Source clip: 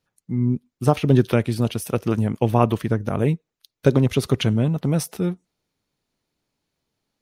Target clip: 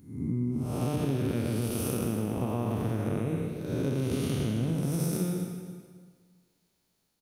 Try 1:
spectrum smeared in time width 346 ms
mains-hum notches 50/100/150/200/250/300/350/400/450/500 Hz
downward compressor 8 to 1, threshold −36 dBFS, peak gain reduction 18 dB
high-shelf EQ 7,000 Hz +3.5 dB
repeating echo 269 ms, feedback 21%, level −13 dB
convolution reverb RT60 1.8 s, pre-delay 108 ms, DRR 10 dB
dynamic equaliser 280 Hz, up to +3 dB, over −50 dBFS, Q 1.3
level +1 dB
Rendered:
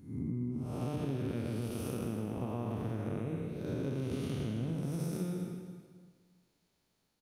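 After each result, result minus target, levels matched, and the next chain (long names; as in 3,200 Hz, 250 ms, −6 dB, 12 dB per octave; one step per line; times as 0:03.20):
downward compressor: peak gain reduction +6.5 dB; 8,000 Hz band −5.5 dB
spectrum smeared in time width 346 ms
mains-hum notches 50/100/150/200/250/300/350/400/450/500 Hz
downward compressor 8 to 1, threshold −28.5 dBFS, peak gain reduction 11.5 dB
high-shelf EQ 7,000 Hz +3.5 dB
repeating echo 269 ms, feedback 21%, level −13 dB
convolution reverb RT60 1.8 s, pre-delay 108 ms, DRR 10 dB
dynamic equaliser 280 Hz, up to +3 dB, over −50 dBFS, Q 1.3
level +1 dB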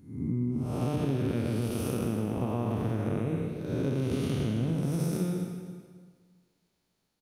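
8,000 Hz band −5.5 dB
spectrum smeared in time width 346 ms
mains-hum notches 50/100/150/200/250/300/350/400/450/500 Hz
downward compressor 8 to 1, threshold −28.5 dBFS, peak gain reduction 11.5 dB
high-shelf EQ 7,000 Hz +12.5 dB
repeating echo 269 ms, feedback 21%, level −13 dB
convolution reverb RT60 1.8 s, pre-delay 108 ms, DRR 10 dB
dynamic equaliser 280 Hz, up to +3 dB, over −50 dBFS, Q 1.3
level +1 dB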